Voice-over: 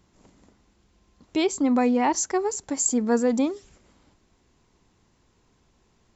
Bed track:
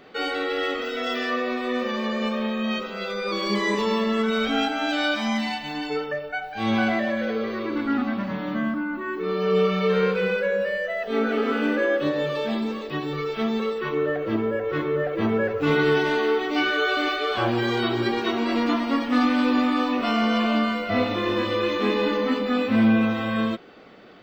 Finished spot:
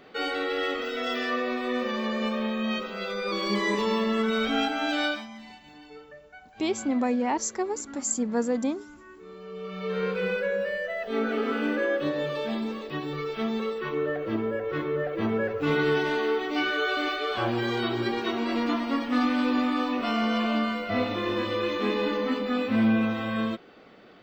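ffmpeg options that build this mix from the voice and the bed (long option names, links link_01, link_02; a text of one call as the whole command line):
ffmpeg -i stem1.wav -i stem2.wav -filter_complex "[0:a]adelay=5250,volume=-4.5dB[link_01];[1:a]volume=12.5dB,afade=type=out:start_time=5.04:duration=0.23:silence=0.149624,afade=type=in:start_time=9.6:duration=0.68:silence=0.177828[link_02];[link_01][link_02]amix=inputs=2:normalize=0" out.wav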